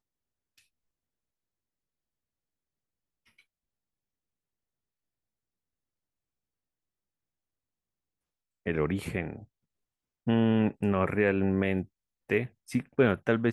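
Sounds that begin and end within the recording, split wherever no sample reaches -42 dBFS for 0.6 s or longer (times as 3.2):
8.66–9.44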